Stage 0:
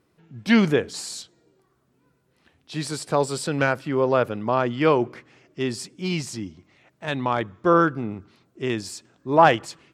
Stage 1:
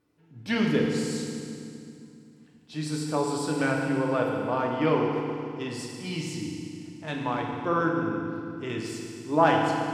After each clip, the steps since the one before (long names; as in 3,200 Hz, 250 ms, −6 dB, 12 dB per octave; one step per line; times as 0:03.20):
feedback delay network reverb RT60 2.5 s, low-frequency decay 1.4×, high-frequency decay 0.9×, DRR −1.5 dB
level −8.5 dB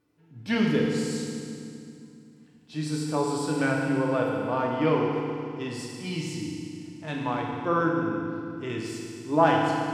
harmonic and percussive parts rebalanced percussive −5 dB
level +1.5 dB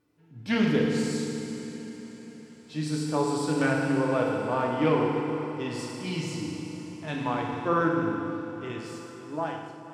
fade-out on the ending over 1.87 s
feedback delay with all-pass diffusion 485 ms, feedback 56%, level −13.5 dB
highs frequency-modulated by the lows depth 0.12 ms